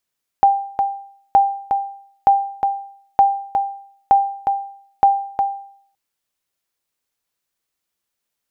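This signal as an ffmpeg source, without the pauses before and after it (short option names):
-f lavfi -i "aevalsrc='0.562*(sin(2*PI*793*mod(t,0.92))*exp(-6.91*mod(t,0.92)/0.6)+0.501*sin(2*PI*793*max(mod(t,0.92)-0.36,0))*exp(-6.91*max(mod(t,0.92)-0.36,0)/0.6))':d=5.52:s=44100"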